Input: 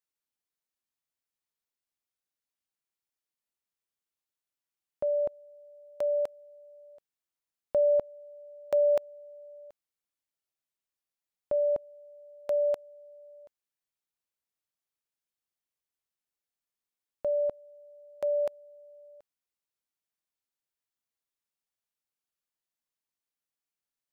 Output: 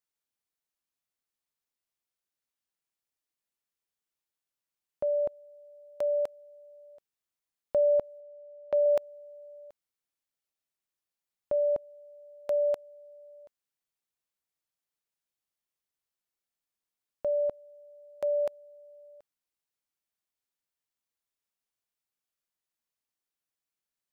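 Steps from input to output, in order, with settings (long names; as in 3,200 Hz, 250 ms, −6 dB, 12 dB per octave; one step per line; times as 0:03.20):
0:08.20–0:08.86: high-frequency loss of the air 260 metres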